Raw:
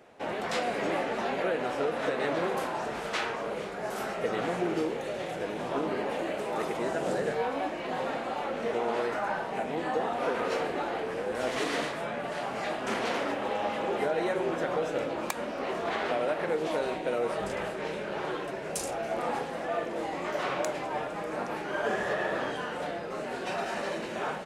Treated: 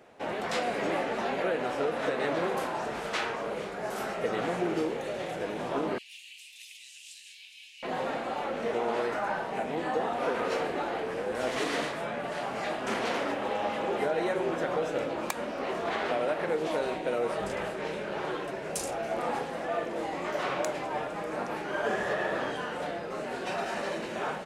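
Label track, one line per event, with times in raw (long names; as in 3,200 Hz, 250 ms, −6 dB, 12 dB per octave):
5.980000	7.830000	elliptic high-pass filter 2,600 Hz, stop band 50 dB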